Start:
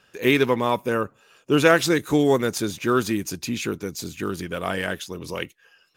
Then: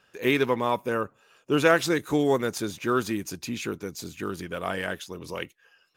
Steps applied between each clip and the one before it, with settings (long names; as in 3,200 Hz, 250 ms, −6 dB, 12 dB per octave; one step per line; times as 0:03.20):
parametric band 920 Hz +3 dB 2.3 octaves
level −5.5 dB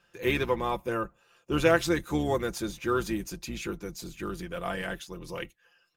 sub-octave generator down 2 octaves, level −3 dB
comb filter 5.8 ms, depth 55%
level −4.5 dB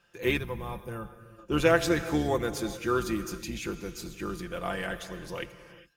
reverb whose tail is shaped and stops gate 440 ms flat, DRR 10.5 dB
gain on a spectral selection 0:00.38–0:01.39, 220–8,500 Hz −10 dB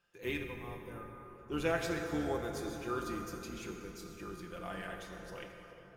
tuned comb filter 410 Hz, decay 0.7 s, mix 70%
dense smooth reverb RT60 3.7 s, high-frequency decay 0.45×, DRR 3 dB
level −1 dB